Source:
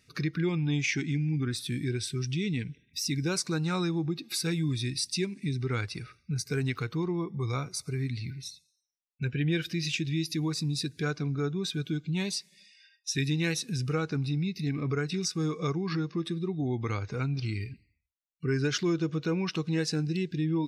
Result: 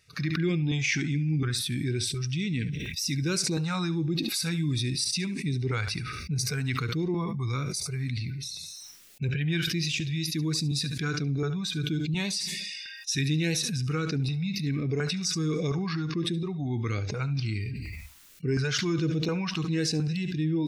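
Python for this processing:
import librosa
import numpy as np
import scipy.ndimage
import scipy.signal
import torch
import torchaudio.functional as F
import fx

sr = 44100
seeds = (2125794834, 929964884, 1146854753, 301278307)

p1 = fx.filter_lfo_notch(x, sr, shape='saw_up', hz=1.4, low_hz=240.0, high_hz=1500.0, q=0.96)
p2 = p1 + fx.echo_single(p1, sr, ms=71, db=-16.5, dry=0)
p3 = fx.sustainer(p2, sr, db_per_s=22.0)
y = F.gain(torch.from_numpy(p3), 1.5).numpy()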